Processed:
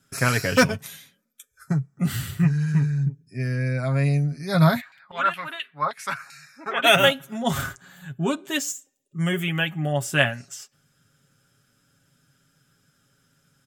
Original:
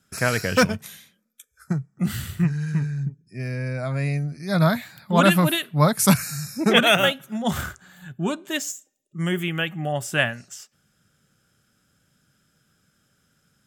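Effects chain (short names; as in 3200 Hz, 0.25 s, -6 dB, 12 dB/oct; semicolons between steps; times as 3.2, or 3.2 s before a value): comb 7.3 ms, depth 55%; 4.8–6.83 LFO band-pass saw down 5.9 Hz -> 1.6 Hz 970–2800 Hz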